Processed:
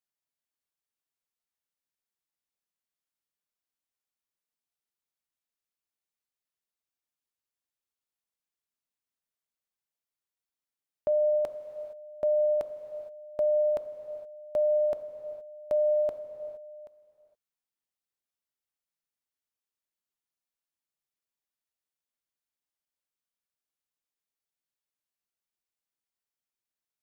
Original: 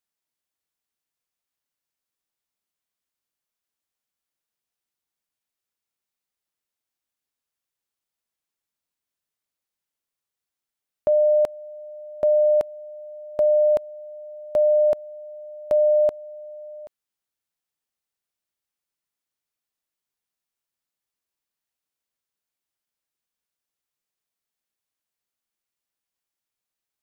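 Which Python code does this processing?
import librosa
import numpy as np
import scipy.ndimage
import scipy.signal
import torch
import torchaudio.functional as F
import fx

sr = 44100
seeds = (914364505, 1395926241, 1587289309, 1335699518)

y = fx.rev_gated(x, sr, seeds[0], gate_ms=490, shape='flat', drr_db=8.0)
y = y * 10.0 ** (-7.5 / 20.0)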